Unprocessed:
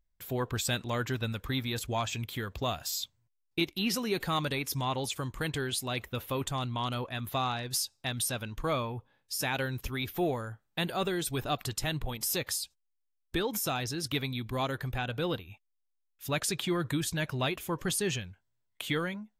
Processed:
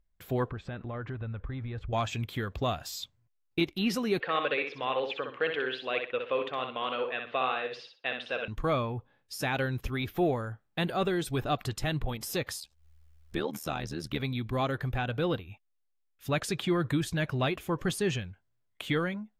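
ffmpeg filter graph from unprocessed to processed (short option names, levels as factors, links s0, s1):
-filter_complex "[0:a]asettb=1/sr,asplit=3[s0][s1][s2];[s0]atrim=end=0.504[s3];[s1]atrim=start=0.5:end=1.93,asetpts=PTS-STARTPTS,afade=t=in:d=0.004:c=qsin,afade=t=out:st=1.426:d=0.004:c=qsin,lowpass=1800,asubboost=boost=10:cutoff=99,acompressor=threshold=0.0141:ratio=4:attack=3.2:release=140:knee=1:detection=peak[s4];[s2]atrim=start=1.926[s5];[s3][s4]acrossfade=d=0.004:c1=hsin:c2=qsin[s6];[s6][s5]acrossfade=d=0.004:c1=qsin:c2=hsin,asettb=1/sr,asplit=3[s7][s8][s9];[s7]atrim=end=4.204[s10];[s8]atrim=start=4.2:end=8.48,asetpts=PTS-STARTPTS,afade=t=in:d=0.004:c=qsin,afade=t=out:st=4.276:d=0.004:c=qsin,highpass=470,equalizer=f=480:t=q:w=4:g=10,equalizer=f=830:t=q:w=4:g=-4,equalizer=f=1700:t=q:w=4:g=3,equalizer=f=2700:t=q:w=4:g=7,lowpass=f=3500:w=0.5412,lowpass=f=3500:w=1.3066,aecho=1:1:62|124|186:0.501|0.135|0.0365,atrim=end_sample=188748[s11];[s9]atrim=start=8.476[s12];[s10][s11]acrossfade=d=0.004:c1=hsin:c2=qsin[s13];[s13][s12]acrossfade=d=0.004:c1=qsin:c2=hsin,asettb=1/sr,asplit=3[s14][s15][s16];[s14]atrim=end=12.604[s17];[s15]atrim=start=12.6:end=14.2,asetpts=PTS-STARTPTS,afade=t=in:d=0.004:c=qsin,afade=t=out:st=1.596:d=0.004:c=qsin,acompressor=mode=upward:threshold=0.0126:ratio=2.5:attack=3.2:release=140:knee=2.83:detection=peak,tremolo=f=77:d=0.857[s18];[s16]atrim=start=14.196[s19];[s17][s18]acrossfade=d=0.004:c1=hsin:c2=qsin[s20];[s20][s19]acrossfade=d=0.004:c1=qsin:c2=hsin,highshelf=f=4100:g=-12,bandreject=f=940:w=14,volume=1.41"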